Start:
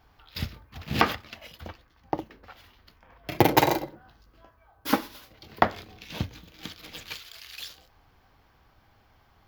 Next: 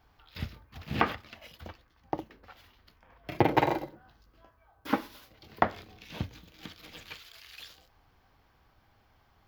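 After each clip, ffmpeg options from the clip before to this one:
-filter_complex "[0:a]acrossover=split=3200[s0][s1];[s1]acompressor=threshold=0.00501:ratio=4:attack=1:release=60[s2];[s0][s2]amix=inputs=2:normalize=0,volume=0.631"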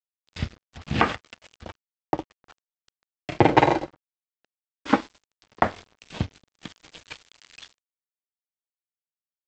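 -af "aresample=16000,aeval=exprs='sgn(val(0))*max(abs(val(0))-0.00422,0)':c=same,aresample=44100,alimiter=level_in=2.99:limit=0.891:release=50:level=0:latency=1,volume=0.891"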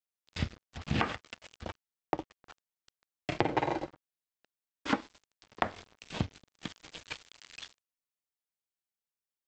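-af "acompressor=threshold=0.0562:ratio=6,volume=0.891"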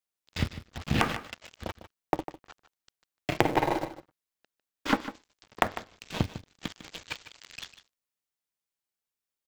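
-filter_complex "[0:a]asplit=2[s0][s1];[s1]acrusher=bits=3:dc=4:mix=0:aa=0.000001,volume=0.376[s2];[s0][s2]amix=inputs=2:normalize=0,aecho=1:1:151:0.211,volume=1.33"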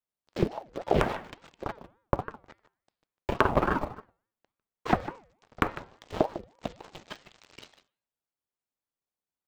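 -af "tiltshelf=f=1200:g=6.5,bandreject=f=218.4:t=h:w=4,bandreject=f=436.8:t=h:w=4,bandreject=f=655.2:t=h:w=4,bandreject=f=873.6:t=h:w=4,bandreject=f=1092:t=h:w=4,bandreject=f=1310.4:t=h:w=4,bandreject=f=1528.8:t=h:w=4,bandreject=f=1747.2:t=h:w=4,bandreject=f=1965.6:t=h:w=4,bandreject=f=2184:t=h:w=4,bandreject=f=2402.4:t=h:w=4,bandreject=f=2620.8:t=h:w=4,bandreject=f=2839.2:t=h:w=4,bandreject=f=3057.6:t=h:w=4,bandreject=f=3276:t=h:w=4,bandreject=f=3494.4:t=h:w=4,bandreject=f=3712.8:t=h:w=4,bandreject=f=3931.2:t=h:w=4,bandreject=f=4149.6:t=h:w=4,bandreject=f=4368:t=h:w=4,bandreject=f=4586.4:t=h:w=4,bandreject=f=4804.8:t=h:w=4,aeval=exprs='val(0)*sin(2*PI*510*n/s+510*0.5/3.5*sin(2*PI*3.5*n/s))':c=same"

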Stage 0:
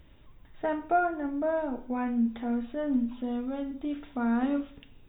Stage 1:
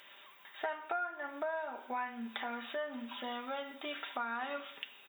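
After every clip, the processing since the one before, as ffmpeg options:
-af "highpass=1100,aecho=1:1:5.1:0.38,acompressor=threshold=0.00398:ratio=5,volume=3.98"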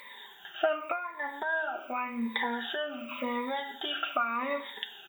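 -af "afftfilt=real='re*pow(10,20/40*sin(2*PI*(0.97*log(max(b,1)*sr/1024/100)/log(2)-(-0.88)*(pts-256)/sr)))':imag='im*pow(10,20/40*sin(2*PI*(0.97*log(max(b,1)*sr/1024/100)/log(2)-(-0.88)*(pts-256)/sr)))':win_size=1024:overlap=0.75,volume=1.58"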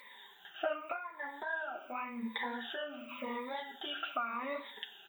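-af "flanger=delay=3.9:depth=6.9:regen=-36:speed=1.9:shape=sinusoidal,volume=0.708"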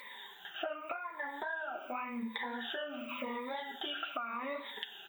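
-af "acompressor=threshold=0.00794:ratio=4,volume=1.88"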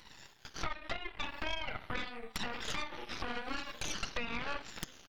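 -filter_complex "[0:a]acrossover=split=220[s0][s1];[s0]adelay=450[s2];[s2][s1]amix=inputs=2:normalize=0,aresample=32000,aresample=44100,aeval=exprs='0.0944*(cos(1*acos(clip(val(0)/0.0944,-1,1)))-cos(1*PI/2))+0.0237*(cos(3*acos(clip(val(0)/0.0944,-1,1)))-cos(3*PI/2))+0.0376*(cos(8*acos(clip(val(0)/0.0944,-1,1)))-cos(8*PI/2))':c=same,volume=0.708"

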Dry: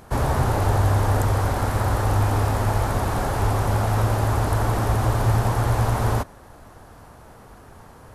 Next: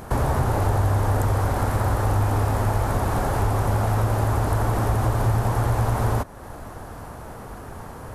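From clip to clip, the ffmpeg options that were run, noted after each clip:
-af "equalizer=f=4000:w=0.61:g=-4,acompressor=threshold=0.02:ratio=2,volume=2.66"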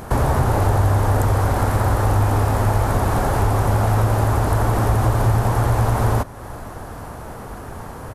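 -af "aecho=1:1:387:0.0708,volume=1.58"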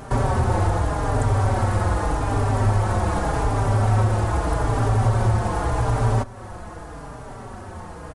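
-filter_complex "[0:a]aresample=22050,aresample=44100,asplit=2[s0][s1];[s1]adelay=4.6,afreqshift=-0.83[s2];[s0][s2]amix=inputs=2:normalize=1"

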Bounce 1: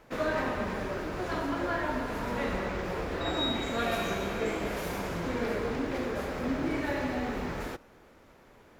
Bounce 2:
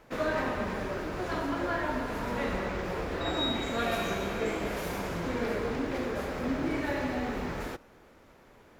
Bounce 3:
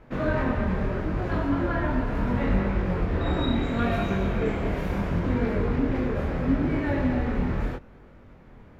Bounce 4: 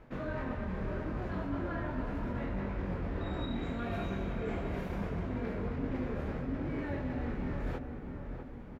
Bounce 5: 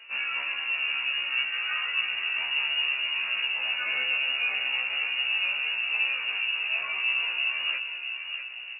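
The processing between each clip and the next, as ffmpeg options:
-af anull
-af "bass=f=250:g=12,treble=f=4000:g=-13,flanger=delay=20:depth=7.3:speed=0.74,volume=1.68"
-filter_complex "[0:a]areverse,acompressor=threshold=0.0282:ratio=6,areverse,asplit=2[s0][s1];[s1]adelay=648,lowpass=f=1500:p=1,volume=0.473,asplit=2[s2][s3];[s3]adelay=648,lowpass=f=1500:p=1,volume=0.5,asplit=2[s4][s5];[s5]adelay=648,lowpass=f=1500:p=1,volume=0.5,asplit=2[s6][s7];[s7]adelay=648,lowpass=f=1500:p=1,volume=0.5,asplit=2[s8][s9];[s9]adelay=648,lowpass=f=1500:p=1,volume=0.5,asplit=2[s10][s11];[s11]adelay=648,lowpass=f=1500:p=1,volume=0.5[s12];[s0][s2][s4][s6][s8][s10][s12]amix=inputs=7:normalize=0,volume=0.75"
-af "lowpass=f=2500:t=q:w=0.5098,lowpass=f=2500:t=q:w=0.6013,lowpass=f=2500:t=q:w=0.9,lowpass=f=2500:t=q:w=2.563,afreqshift=-2900,afftfilt=real='re*1.73*eq(mod(b,3),0)':imag='im*1.73*eq(mod(b,3),0)':win_size=2048:overlap=0.75,volume=2.82"

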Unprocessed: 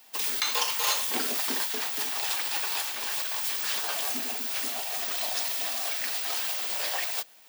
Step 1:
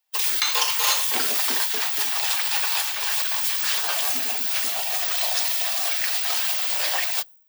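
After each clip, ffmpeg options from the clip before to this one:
-filter_complex "[0:a]highpass=f=630:p=1,afftdn=nr=30:nf=-46,asplit=2[s0][s1];[s1]alimiter=limit=0.0708:level=0:latency=1:release=462,volume=0.794[s2];[s0][s2]amix=inputs=2:normalize=0,volume=1.5"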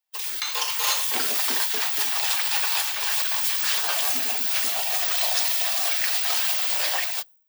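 -af "dynaudnorm=f=250:g=5:m=2.99,volume=0.422"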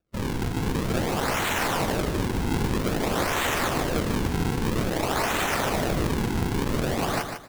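-af "alimiter=limit=0.119:level=0:latency=1:release=15,acrusher=samples=42:mix=1:aa=0.000001:lfo=1:lforange=67.2:lforate=0.51,aecho=1:1:150|300|450:0.447|0.121|0.0326,volume=1.26"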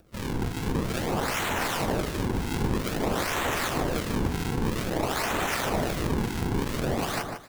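-filter_complex "[0:a]acompressor=mode=upward:threshold=0.01:ratio=2.5,acrossover=split=1400[s0][s1];[s0]aeval=exprs='val(0)*(1-0.5/2+0.5/2*cos(2*PI*2.6*n/s))':c=same[s2];[s1]aeval=exprs='val(0)*(1-0.5/2-0.5/2*cos(2*PI*2.6*n/s))':c=same[s3];[s2][s3]amix=inputs=2:normalize=0"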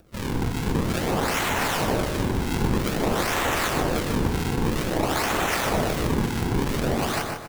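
-af "aecho=1:1:124|248|372:0.398|0.104|0.0269,volume=1.41"

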